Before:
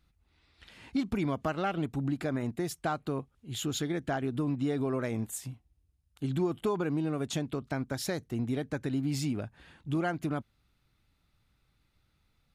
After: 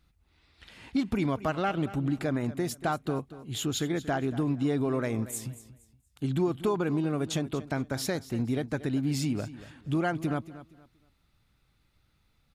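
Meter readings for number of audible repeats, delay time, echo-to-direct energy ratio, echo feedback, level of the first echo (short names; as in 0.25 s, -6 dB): 2, 0.234 s, -15.0 dB, 27%, -15.5 dB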